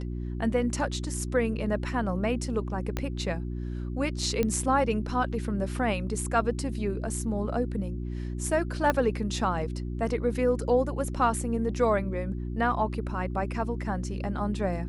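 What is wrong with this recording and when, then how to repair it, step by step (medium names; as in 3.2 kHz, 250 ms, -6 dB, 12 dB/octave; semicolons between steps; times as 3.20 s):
hum 60 Hz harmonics 6 -33 dBFS
2.97 s: pop -15 dBFS
4.43 s: pop -14 dBFS
8.90 s: pop -11 dBFS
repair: de-click; de-hum 60 Hz, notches 6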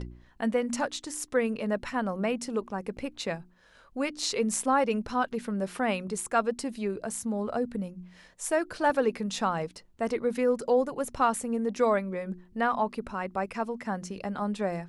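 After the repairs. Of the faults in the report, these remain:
2.97 s: pop
8.90 s: pop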